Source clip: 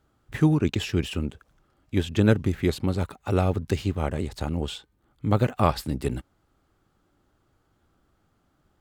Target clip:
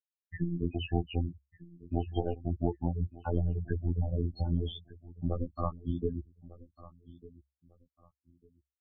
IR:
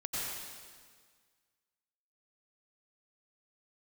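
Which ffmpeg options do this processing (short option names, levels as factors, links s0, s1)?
-filter_complex "[0:a]bandreject=f=50:t=h:w=6,bandreject=f=100:t=h:w=6,bandreject=f=150:t=h:w=6,bandreject=f=200:t=h:w=6,bandreject=f=250:t=h:w=6,bandreject=f=300:t=h:w=6,bandreject=f=350:t=h:w=6,dynaudnorm=f=340:g=5:m=4.22,aeval=exprs='0.944*(cos(1*acos(clip(val(0)/0.944,-1,1)))-cos(1*PI/2))+0.168*(cos(4*acos(clip(val(0)/0.944,-1,1)))-cos(4*PI/2))+0.00841*(cos(8*acos(clip(val(0)/0.944,-1,1)))-cos(8*PI/2))':c=same,asettb=1/sr,asplit=3[s0][s1][s2];[s0]atrim=end=0.754[s3];[s1]atrim=start=0.75:end=2.91,asetpts=PTS-STARTPTS,afade=t=in:d=0.004:c=qsin,afade=t=out:st=2.156:d=0.004:c=qsin,equalizer=f=770:w=1.5:g=13.5[s4];[s2]atrim=start=2.906[s5];[s3][s4]acrossfade=d=0.004:c1=hsin:c2=qsin[s6];[s6][s5]acrossfade=d=0.004:c1=qsin:c2=hsin,acompressor=threshold=0.0631:ratio=8,afftfilt=real='re*gte(hypot(re,im),0.126)':imag='im*gte(hypot(re,im),0.126)':win_size=1024:overlap=0.75,afftfilt=real='hypot(re,im)*cos(PI*b)':imag='0':win_size=2048:overlap=0.75,equalizer=f=69:w=6.3:g=6.5,aecho=1:1:1199|2398:0.112|0.0281"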